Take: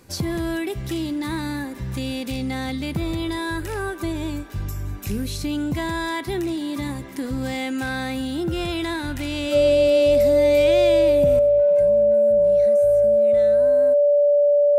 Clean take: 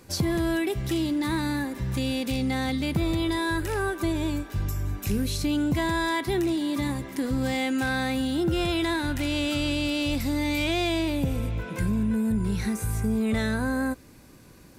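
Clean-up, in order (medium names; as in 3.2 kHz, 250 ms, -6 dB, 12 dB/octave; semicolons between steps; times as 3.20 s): band-stop 580 Hz, Q 30; trim 0 dB, from 11.39 s +11.5 dB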